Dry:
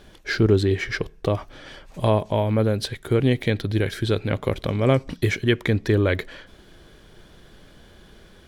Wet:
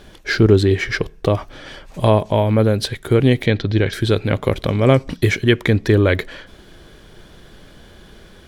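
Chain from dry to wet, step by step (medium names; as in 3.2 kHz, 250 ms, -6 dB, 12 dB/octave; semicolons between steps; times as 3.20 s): 3.46–3.93 s: low-pass 6.2 kHz 24 dB/octave; trim +5.5 dB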